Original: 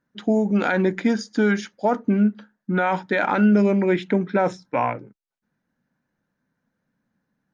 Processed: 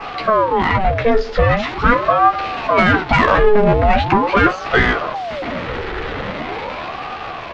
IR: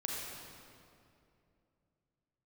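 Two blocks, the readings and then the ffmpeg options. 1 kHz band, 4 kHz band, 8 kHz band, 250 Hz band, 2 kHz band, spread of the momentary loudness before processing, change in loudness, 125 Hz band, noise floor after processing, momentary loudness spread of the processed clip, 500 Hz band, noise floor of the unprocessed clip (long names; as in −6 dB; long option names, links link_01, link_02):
+12.0 dB, +13.0 dB, can't be measured, −1.0 dB, +10.0 dB, 7 LU, +5.5 dB, +7.0 dB, −28 dBFS, 12 LU, +7.0 dB, −80 dBFS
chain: -filter_complex "[0:a]aeval=exprs='val(0)+0.5*0.0335*sgn(val(0))':channel_layout=same,lowpass=frequency=3500:width=0.5412,lowpass=frequency=3500:width=1.3066,bandreject=frequency=46.65:width_type=h:width=4,bandreject=frequency=93.3:width_type=h:width=4,bandreject=frequency=139.95:width_type=h:width=4,bandreject=frequency=186.6:width_type=h:width=4,bandreject=frequency=233.25:width_type=h:width=4,bandreject=frequency=279.9:width_type=h:width=4,bandreject=frequency=326.55:width_type=h:width=4,bandreject=frequency=373.2:width_type=h:width=4,bandreject=frequency=419.85:width_type=h:width=4,adynamicequalizer=threshold=0.00794:dfrequency=2600:dqfactor=2.2:tfrequency=2600:tqfactor=2.2:attack=5:release=100:ratio=0.375:range=1.5:mode=cutabove:tftype=bell,asplit=2[link_01][link_02];[link_02]alimiter=limit=-17.5dB:level=0:latency=1:release=189,volume=0.5dB[link_03];[link_01][link_03]amix=inputs=2:normalize=0,dynaudnorm=framelen=400:gausssize=7:maxgain=9dB,asoftclip=type=tanh:threshold=-7.5dB,asplit=2[link_04][link_05];[link_05]adelay=13,volume=-4.5dB[link_06];[link_04][link_06]amix=inputs=2:normalize=0,aeval=exprs='val(0)*sin(2*PI*600*n/s+600*0.65/0.42*sin(2*PI*0.42*n/s))':channel_layout=same,volume=3.5dB"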